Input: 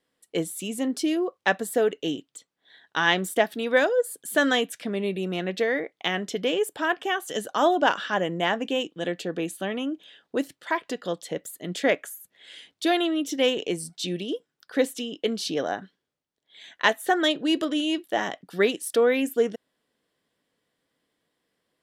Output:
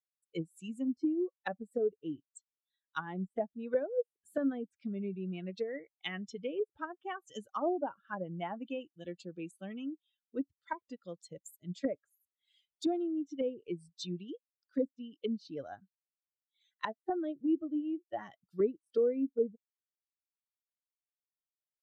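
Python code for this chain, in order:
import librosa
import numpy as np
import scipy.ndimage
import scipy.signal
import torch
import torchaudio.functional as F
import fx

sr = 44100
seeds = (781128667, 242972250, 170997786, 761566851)

y = fx.bin_expand(x, sr, power=2.0)
y = fx.env_lowpass_down(y, sr, base_hz=470.0, full_db=-26.5)
y = y * librosa.db_to_amplitude(-3.0)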